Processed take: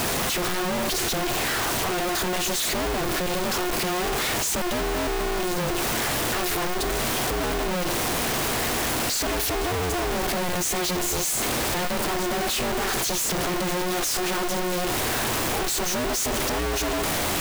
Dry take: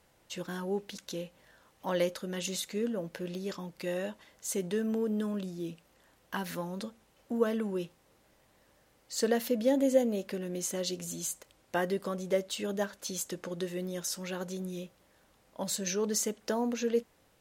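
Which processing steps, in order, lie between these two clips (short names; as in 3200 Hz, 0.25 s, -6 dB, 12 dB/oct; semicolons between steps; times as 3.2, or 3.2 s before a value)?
infinite clipping; polarity switched at an audio rate 180 Hz; gain +9 dB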